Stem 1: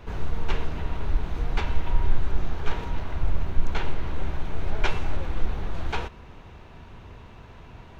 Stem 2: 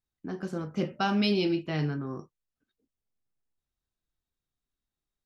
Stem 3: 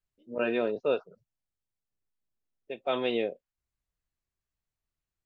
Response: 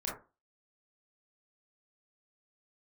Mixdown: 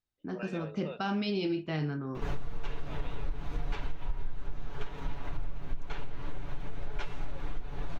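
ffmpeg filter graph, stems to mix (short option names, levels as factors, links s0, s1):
-filter_complex "[0:a]aecho=1:1:7:0.65,adelay=2150,volume=1.06[s0];[1:a]alimiter=limit=0.0891:level=0:latency=1,lowpass=5400,volume=0.75,asplit=2[s1][s2];[s2]volume=0.133[s3];[2:a]highpass=610,acompressor=threshold=0.0224:ratio=2,volume=0.376[s4];[3:a]atrim=start_sample=2205[s5];[s3][s5]afir=irnorm=-1:irlink=0[s6];[s0][s1][s4][s6]amix=inputs=4:normalize=0,acompressor=threshold=0.0501:ratio=10"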